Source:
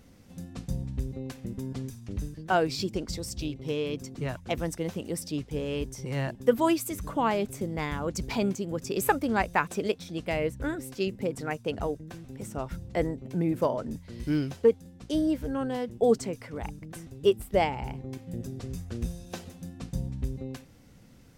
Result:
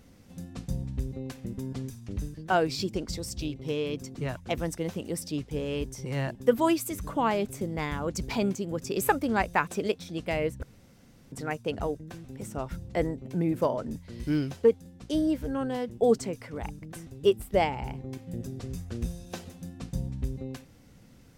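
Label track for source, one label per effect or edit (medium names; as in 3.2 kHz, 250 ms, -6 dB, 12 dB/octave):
10.630000	11.320000	room tone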